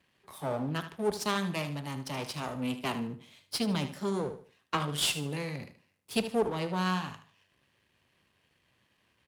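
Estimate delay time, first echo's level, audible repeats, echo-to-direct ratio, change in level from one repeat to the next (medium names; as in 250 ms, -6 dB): 76 ms, -12.0 dB, 3, -11.5 dB, -10.0 dB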